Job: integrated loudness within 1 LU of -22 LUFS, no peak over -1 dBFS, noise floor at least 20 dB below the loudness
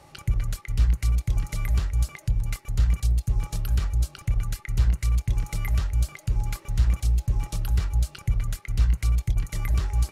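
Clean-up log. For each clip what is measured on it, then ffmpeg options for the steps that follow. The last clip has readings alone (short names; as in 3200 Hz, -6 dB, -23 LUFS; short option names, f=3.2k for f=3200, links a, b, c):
loudness -27.0 LUFS; peak -12.0 dBFS; loudness target -22.0 LUFS
-> -af "volume=5dB"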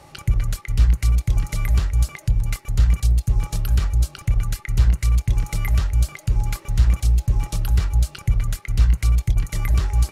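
loudness -22.0 LUFS; peak -7.0 dBFS; noise floor -48 dBFS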